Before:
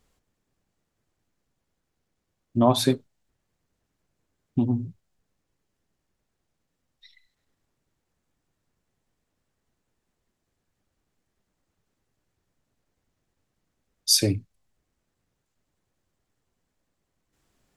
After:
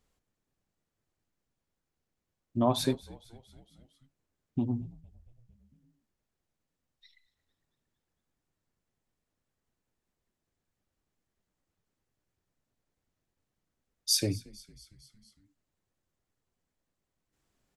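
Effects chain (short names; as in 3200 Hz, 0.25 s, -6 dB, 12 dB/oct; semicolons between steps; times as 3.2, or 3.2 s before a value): frequency-shifting echo 0.228 s, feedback 65%, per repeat -79 Hz, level -22 dB; gain -7 dB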